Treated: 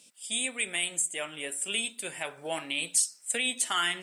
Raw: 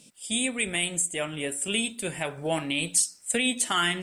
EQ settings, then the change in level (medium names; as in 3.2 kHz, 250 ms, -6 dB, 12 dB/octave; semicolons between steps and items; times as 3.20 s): high-pass 740 Hz 6 dB/octave; -2.0 dB